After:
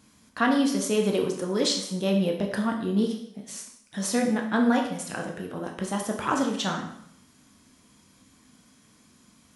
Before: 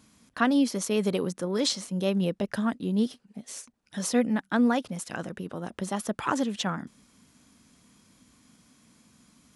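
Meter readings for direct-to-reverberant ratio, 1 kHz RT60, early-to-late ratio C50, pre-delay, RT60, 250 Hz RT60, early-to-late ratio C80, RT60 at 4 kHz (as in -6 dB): 1.0 dB, 0.70 s, 6.5 dB, 7 ms, 0.70 s, 0.70 s, 9.0 dB, 0.65 s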